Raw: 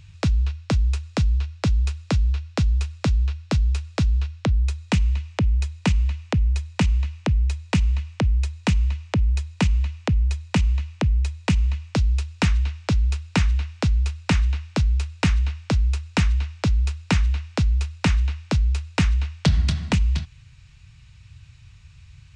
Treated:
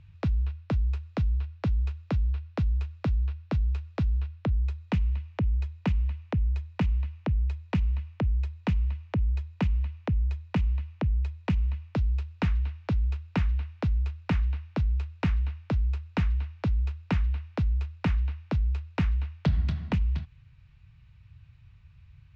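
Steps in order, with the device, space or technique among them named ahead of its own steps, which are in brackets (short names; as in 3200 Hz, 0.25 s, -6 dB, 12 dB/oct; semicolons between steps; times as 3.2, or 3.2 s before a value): phone in a pocket (LPF 3800 Hz 12 dB/oct; high shelf 2400 Hz -9.5 dB); gain -6 dB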